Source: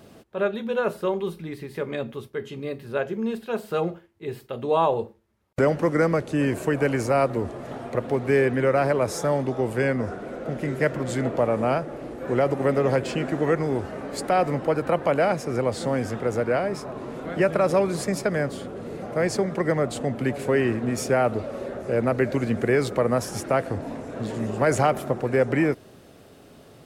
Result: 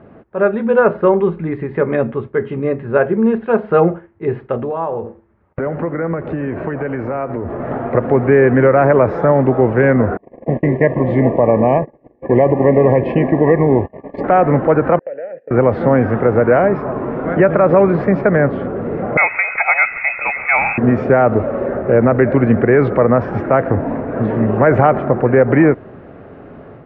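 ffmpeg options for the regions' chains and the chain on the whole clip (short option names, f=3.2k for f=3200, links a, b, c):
-filter_complex "[0:a]asettb=1/sr,asplit=3[a][b][c];[a]atrim=end=4.574[d];[b]atrim=start=4.57:end=7.6,asetpts=PTS-STARTPTS,afade=t=in:d=0.004:c=qsin,afade=t=out:st=3.026:d=0.004:c=qsin,acompressor=threshold=-33dB:ratio=4:attack=3.2:release=140:knee=1:detection=peak,asplit=2[e][f];[f]adelay=12,volume=-12.5dB[g];[e][g]amix=inputs=2:normalize=0,atrim=end_sample=133623,aecho=1:1:83:0.168,atrim=end_sample=133623[h];[c]atrim=start=7.596[i];[d][h]acrossfade=d=0.004:c1=hsin:c2=qsin[j];[j][i]acrossfade=d=0.004:c1=qsin:c2=hsin,asettb=1/sr,asplit=3[k][l][m];[k]atrim=end=10.174[n];[l]atrim=start=10.17:end=14.24,asetpts=PTS-STARTPTS,afade=t=in:d=0.004:c=qsin,afade=t=out:st=4.066:d=0.004:c=qsin,agate=range=-34dB:threshold=-32dB:ratio=16:release=100:detection=peak,asuperstop=centerf=1400:order=20:qfactor=2.9[o];[m]atrim=start=14.236[p];[n][o]acrossfade=d=0.004:c1=hsin:c2=qsin[q];[q][p]acrossfade=d=0.004:c1=qsin:c2=hsin,asettb=1/sr,asplit=3[r][s][t];[r]atrim=end=14.994[u];[s]atrim=start=14.99:end=15.51,asetpts=PTS-STARTPTS,afade=t=in:d=0.004:c=qsin,afade=t=out:st=0.516:d=0.004:c=qsin,agate=range=-24dB:threshold=-30dB:ratio=16:release=100:detection=peak,acompressor=threshold=-29dB:ratio=5:attack=3.2:release=140:knee=1:detection=peak,asplit=3[v][w][x];[v]bandpass=f=530:t=q:w=8,volume=0dB[y];[w]bandpass=f=1.84k:t=q:w=8,volume=-6dB[z];[x]bandpass=f=2.48k:t=q:w=8,volume=-9dB[aa];[y][z][aa]amix=inputs=3:normalize=0[ab];[t]atrim=start=15.506[ac];[u][ab]acrossfade=d=0.004:c1=hsin:c2=qsin[ad];[ad][ac]acrossfade=d=0.004:c1=qsin:c2=hsin,asettb=1/sr,asplit=3[ae][af][ag];[ae]atrim=end=19.174[ah];[af]atrim=start=19.17:end=20.78,asetpts=PTS-STARTPTS,afade=t=in:d=0.004:c=qsin,afade=t=out:st=1.606:d=0.004:c=qsin,aecho=1:1:1.5:0.48,atrim=end_sample=71001,acrusher=bits=9:dc=4:mix=0:aa=0.000001,lowpass=f=2.3k:t=q:w=0.5098,lowpass=f=2.3k:t=q:w=0.6013,lowpass=f=2.3k:t=q:w=0.9,lowpass=f=2.3k:t=q:w=2.563,afreqshift=-2700[ai];[ag]atrim=start=20.776[aj];[ah][ai]acrossfade=d=0.004:c1=hsin:c2=qsin[ak];[ak][aj]acrossfade=d=0.004:c1=qsin:c2=hsin,lowpass=f=1.9k:w=0.5412,lowpass=f=1.9k:w=1.3066,dynaudnorm=f=330:g=3:m=6.5dB,alimiter=level_in=8dB:limit=-1dB:release=50:level=0:latency=1,volume=-1dB"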